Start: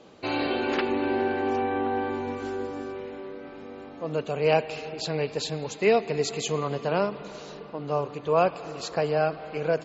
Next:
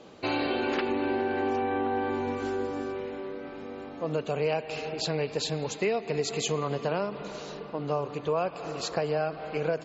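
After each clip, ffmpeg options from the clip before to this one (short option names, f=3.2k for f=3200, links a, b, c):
-af "acompressor=threshold=-26dB:ratio=6,volume=1.5dB"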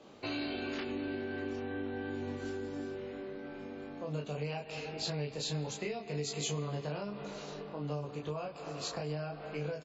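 -filter_complex "[0:a]aecho=1:1:20|34:0.668|0.596,acrossover=split=220|3000[a][b][c];[b]acompressor=threshold=-33dB:ratio=3[d];[a][d][c]amix=inputs=3:normalize=0,volume=-7dB"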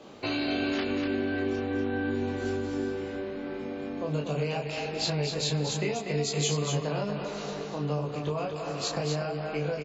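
-af "aecho=1:1:242:0.531,volume=7dB"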